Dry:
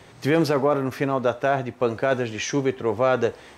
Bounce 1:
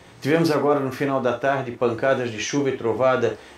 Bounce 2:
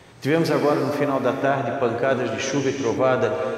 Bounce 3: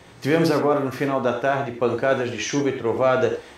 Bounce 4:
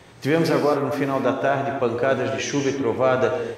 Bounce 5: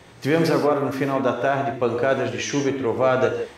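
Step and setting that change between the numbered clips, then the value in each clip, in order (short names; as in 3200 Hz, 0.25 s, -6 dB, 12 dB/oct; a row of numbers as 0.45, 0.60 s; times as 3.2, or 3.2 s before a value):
non-linear reverb, gate: 80, 480, 120, 290, 190 ms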